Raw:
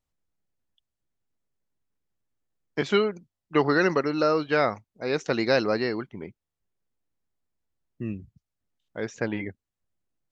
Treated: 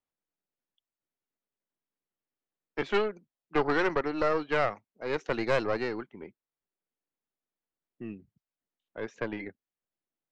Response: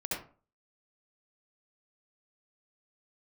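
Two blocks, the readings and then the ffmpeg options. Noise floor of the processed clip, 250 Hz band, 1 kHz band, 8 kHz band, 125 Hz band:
below −85 dBFS, −7.0 dB, −3.0 dB, can't be measured, −7.5 dB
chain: -filter_complex "[0:a]acrossover=split=200 3700:gain=0.158 1 0.251[link_01][link_02][link_03];[link_01][link_02][link_03]amix=inputs=3:normalize=0,aeval=exprs='(tanh(7.08*val(0)+0.75)-tanh(0.75))/7.08':channel_layout=same"

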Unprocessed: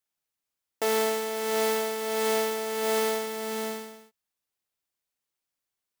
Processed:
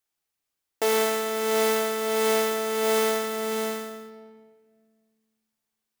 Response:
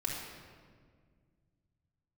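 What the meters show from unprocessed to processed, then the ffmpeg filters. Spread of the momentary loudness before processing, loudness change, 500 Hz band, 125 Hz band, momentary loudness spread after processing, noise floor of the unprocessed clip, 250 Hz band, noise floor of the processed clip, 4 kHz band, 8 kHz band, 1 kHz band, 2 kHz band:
7 LU, +3.0 dB, +3.0 dB, can't be measured, 8 LU, below −85 dBFS, +3.5 dB, −84 dBFS, +3.0 dB, +3.0 dB, +2.5 dB, +3.0 dB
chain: -filter_complex "[0:a]asplit=2[link_01][link_02];[1:a]atrim=start_sample=2205[link_03];[link_02][link_03]afir=irnorm=-1:irlink=0,volume=-8dB[link_04];[link_01][link_04]amix=inputs=2:normalize=0"

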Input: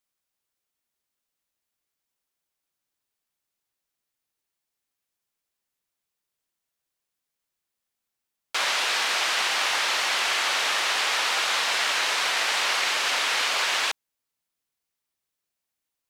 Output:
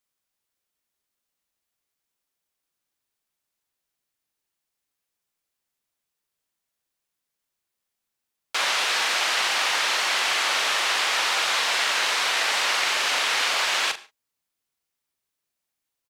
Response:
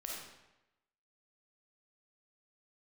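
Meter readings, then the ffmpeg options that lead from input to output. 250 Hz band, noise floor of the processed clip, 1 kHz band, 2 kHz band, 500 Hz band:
+1.0 dB, −83 dBFS, +1.5 dB, +1.0 dB, +1.5 dB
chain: -filter_complex "[0:a]asplit=2[link_01][link_02];[link_02]adelay=41,volume=-10dB[link_03];[link_01][link_03]amix=inputs=2:normalize=0,asplit=2[link_04][link_05];[1:a]atrim=start_sample=2205,afade=type=out:start_time=0.14:duration=0.01,atrim=end_sample=6615,asetrate=27342,aresample=44100[link_06];[link_05][link_06]afir=irnorm=-1:irlink=0,volume=-17.5dB[link_07];[link_04][link_07]amix=inputs=2:normalize=0"

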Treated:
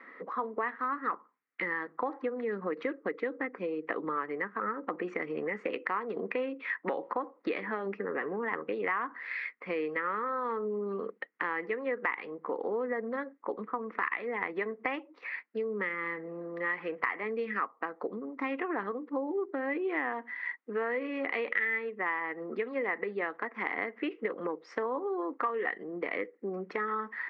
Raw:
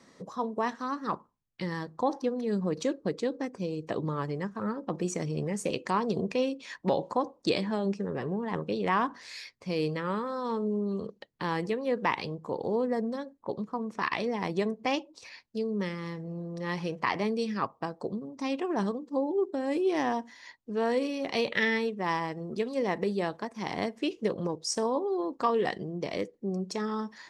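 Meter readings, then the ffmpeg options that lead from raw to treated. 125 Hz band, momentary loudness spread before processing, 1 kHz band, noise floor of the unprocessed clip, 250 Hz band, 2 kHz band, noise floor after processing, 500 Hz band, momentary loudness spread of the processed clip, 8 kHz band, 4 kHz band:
−15.5 dB, 8 LU, −2.5 dB, −62 dBFS, −7.0 dB, +3.5 dB, −62 dBFS, −3.0 dB, 5 LU, below −30 dB, −13.5 dB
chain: -af "highpass=frequency=310:width=0.5412,highpass=frequency=310:width=1.3066,equalizer=frequency=370:width_type=q:width=4:gain=-6,equalizer=frequency=620:width_type=q:width=4:gain=-9,equalizer=frequency=890:width_type=q:width=4:gain=-5,equalizer=frequency=1300:width_type=q:width=4:gain=6,equalizer=frequency=2000:width_type=q:width=4:gain=10,lowpass=frequency=2200:width=0.5412,lowpass=frequency=2200:width=1.3066,acompressor=threshold=-38dB:ratio=4,volume=7.5dB"

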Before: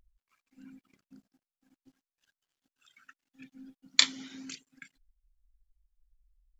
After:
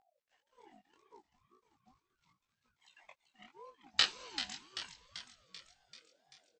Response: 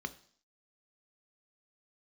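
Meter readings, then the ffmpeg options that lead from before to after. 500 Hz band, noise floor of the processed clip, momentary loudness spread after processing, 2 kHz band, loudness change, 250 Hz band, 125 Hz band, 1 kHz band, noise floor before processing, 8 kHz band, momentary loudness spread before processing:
+5.0 dB, below −85 dBFS, 24 LU, −4.0 dB, −8.5 dB, −13.0 dB, can't be measured, +2.0 dB, below −85 dBFS, −10.5 dB, 21 LU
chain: -filter_complex "[0:a]bandreject=frequency=6300:width=7.7,aresample=16000,asoftclip=type=hard:threshold=-12.5dB,aresample=44100,lowshelf=frequency=240:gain=-8.5,acrossover=split=5400[link_01][link_02];[link_02]acompressor=threshold=-43dB:ratio=4:attack=1:release=60[link_03];[link_01][link_03]amix=inputs=2:normalize=0,crystalizer=i=0.5:c=0,flanger=delay=17:depth=7.4:speed=0.73,asplit=8[link_04][link_05][link_06][link_07][link_08][link_09][link_10][link_11];[link_05]adelay=388,afreqshift=130,volume=-10dB[link_12];[link_06]adelay=776,afreqshift=260,volume=-14.7dB[link_13];[link_07]adelay=1164,afreqshift=390,volume=-19.5dB[link_14];[link_08]adelay=1552,afreqshift=520,volume=-24.2dB[link_15];[link_09]adelay=1940,afreqshift=650,volume=-28.9dB[link_16];[link_10]adelay=2328,afreqshift=780,volume=-33.7dB[link_17];[link_11]adelay=2716,afreqshift=910,volume=-38.4dB[link_18];[link_04][link_12][link_13][link_14][link_15][link_16][link_17][link_18]amix=inputs=8:normalize=0,aeval=exprs='val(0)*sin(2*PI*620*n/s+620*0.25/1.9*sin(2*PI*1.9*n/s))':channel_layout=same,volume=4dB"

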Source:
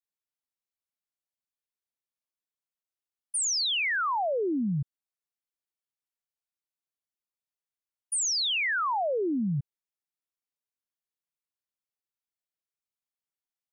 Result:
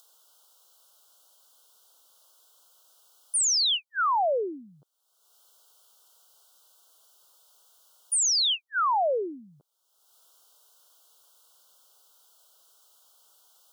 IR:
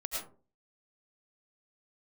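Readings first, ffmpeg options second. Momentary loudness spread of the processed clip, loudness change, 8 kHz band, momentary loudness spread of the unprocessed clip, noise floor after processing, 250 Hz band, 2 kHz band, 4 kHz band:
10 LU, +3.0 dB, +4.0 dB, 8 LU, −72 dBFS, −12.5 dB, −5.5 dB, +3.5 dB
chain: -af "highpass=frequency=460:width=0.5412,highpass=frequency=460:width=1.3066,acompressor=mode=upward:threshold=-41dB:ratio=2.5,asuperstop=centerf=2100:order=12:qfactor=1.5,volume=4dB"

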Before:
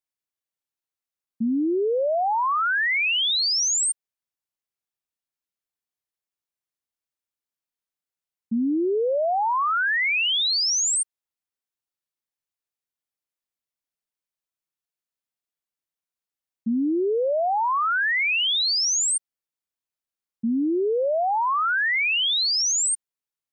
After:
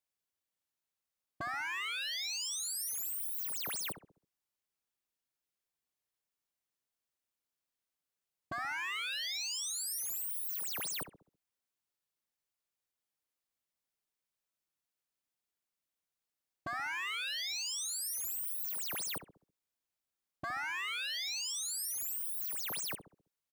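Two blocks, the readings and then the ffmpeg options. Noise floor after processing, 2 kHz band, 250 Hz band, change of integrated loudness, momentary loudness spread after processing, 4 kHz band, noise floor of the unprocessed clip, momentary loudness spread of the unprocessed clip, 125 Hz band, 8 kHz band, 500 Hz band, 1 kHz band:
below −85 dBFS, −16.0 dB, −31.0 dB, −14.5 dB, 5 LU, −15.5 dB, below −85 dBFS, 7 LU, can't be measured, −13.5 dB, −30.5 dB, −20.5 dB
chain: -filter_complex "[0:a]aeval=exprs='0.0237*(abs(mod(val(0)/0.0237+3,4)-2)-1)':channel_layout=same,asplit=2[link_01][link_02];[link_02]adelay=66,lowpass=frequency=910:poles=1,volume=-8dB,asplit=2[link_03][link_04];[link_04]adelay=66,lowpass=frequency=910:poles=1,volume=0.47,asplit=2[link_05][link_06];[link_06]adelay=66,lowpass=frequency=910:poles=1,volume=0.47,asplit=2[link_07][link_08];[link_08]adelay=66,lowpass=frequency=910:poles=1,volume=0.47,asplit=2[link_09][link_10];[link_10]adelay=66,lowpass=frequency=910:poles=1,volume=0.47[link_11];[link_01][link_03][link_05][link_07][link_09][link_11]amix=inputs=6:normalize=0"

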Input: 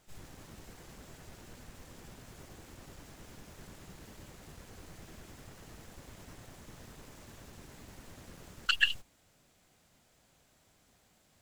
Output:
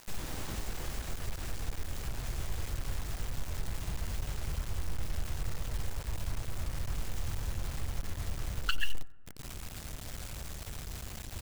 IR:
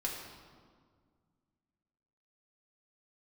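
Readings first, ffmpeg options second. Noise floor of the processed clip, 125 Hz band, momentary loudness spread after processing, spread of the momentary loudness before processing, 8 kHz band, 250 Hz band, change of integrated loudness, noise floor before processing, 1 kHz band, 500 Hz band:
−44 dBFS, +15.0 dB, 5 LU, 18 LU, +9.5 dB, +6.5 dB, −2.5 dB, −69 dBFS, +4.5 dB, +7.0 dB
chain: -filter_complex "[0:a]asubboost=boost=12:cutoff=84,acompressor=threshold=-53dB:ratio=3,acrusher=bits=9:mix=0:aa=0.000001,aecho=1:1:92:0.075,asplit=2[link_01][link_02];[1:a]atrim=start_sample=2205,lowpass=1600,adelay=23[link_03];[link_02][link_03]afir=irnorm=-1:irlink=0,volume=-19.5dB[link_04];[link_01][link_04]amix=inputs=2:normalize=0,volume=17dB"

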